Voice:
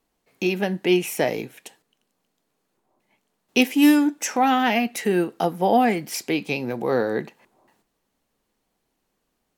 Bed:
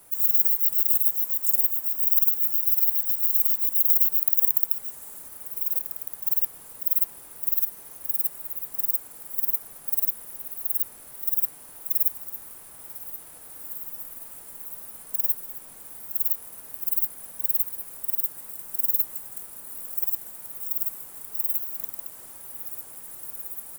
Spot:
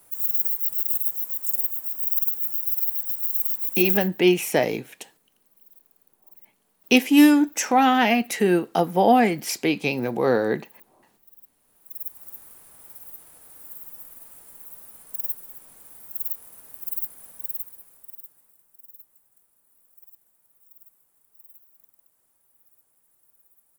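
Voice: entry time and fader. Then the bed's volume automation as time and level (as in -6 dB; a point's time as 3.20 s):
3.35 s, +1.5 dB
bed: 3.95 s -3 dB
4.17 s -27 dB
11.42 s -27 dB
12.28 s -4.5 dB
17.31 s -4.5 dB
18.78 s -24.5 dB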